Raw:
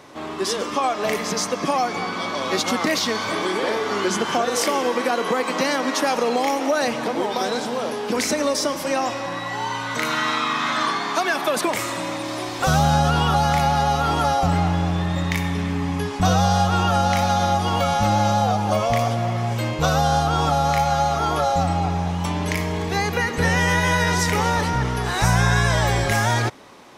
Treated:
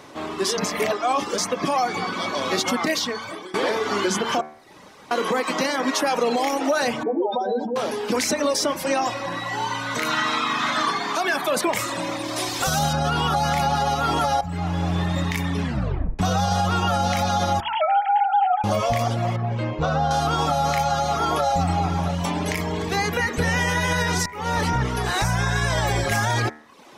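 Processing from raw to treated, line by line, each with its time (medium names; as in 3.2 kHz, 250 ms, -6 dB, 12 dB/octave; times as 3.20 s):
0.58–1.38 s: reverse
2.72–3.54 s: fade out, to -17 dB
4.41–5.11 s: room tone
7.03–7.76 s: spectral contrast enhancement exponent 2.6
12.36–12.93 s: treble shelf 3.8 kHz +10 dB
14.41–15.00 s: fade in, from -14.5 dB
15.63 s: tape stop 0.56 s
17.60–18.64 s: formants replaced by sine waves
19.36–20.11 s: tape spacing loss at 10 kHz 25 dB
21.01–23.20 s: delay 674 ms -12.5 dB
24.26–24.67 s: fade in
whole clip: reverb removal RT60 0.69 s; de-hum 75.81 Hz, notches 32; peak limiter -14.5 dBFS; trim +2 dB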